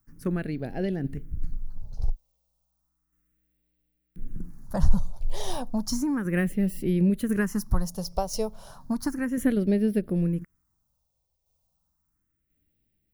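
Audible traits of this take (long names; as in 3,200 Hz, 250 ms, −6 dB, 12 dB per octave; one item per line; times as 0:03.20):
tremolo saw down 0.96 Hz, depth 50%
phaser sweep stages 4, 0.33 Hz, lowest notch 270–1,100 Hz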